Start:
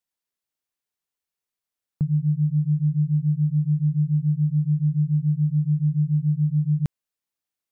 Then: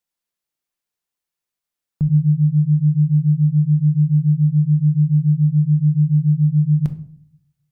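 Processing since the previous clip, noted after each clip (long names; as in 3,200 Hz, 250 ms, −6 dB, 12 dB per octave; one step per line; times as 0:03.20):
rectangular room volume 630 cubic metres, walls furnished, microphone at 0.82 metres
level +2 dB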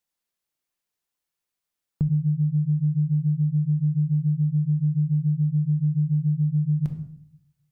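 hum removal 236.4 Hz, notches 39
downward compressor 6 to 1, threshold −20 dBFS, peak gain reduction 9 dB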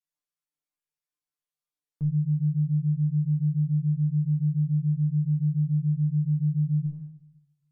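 tuned comb filter 150 Hz, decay 0.24 s, harmonics all, mix 100%
treble cut that deepens with the level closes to 390 Hz, closed at −24 dBFS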